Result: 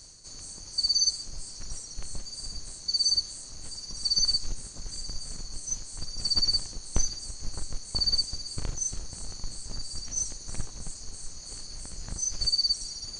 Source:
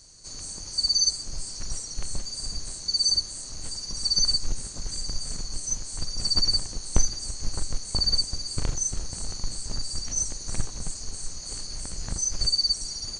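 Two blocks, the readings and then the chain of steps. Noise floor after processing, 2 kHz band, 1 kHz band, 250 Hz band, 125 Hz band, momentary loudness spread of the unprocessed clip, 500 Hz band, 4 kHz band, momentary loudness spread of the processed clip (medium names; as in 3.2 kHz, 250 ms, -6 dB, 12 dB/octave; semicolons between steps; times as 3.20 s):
-44 dBFS, -5.0 dB, -5.5 dB, -5.5 dB, -5.5 dB, 13 LU, -5.5 dB, -2.0 dB, 17 LU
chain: dynamic bell 3.9 kHz, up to +4 dB, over -33 dBFS, Q 0.72; reverse; upward compressor, threshold -33 dBFS; reverse; trim -5.5 dB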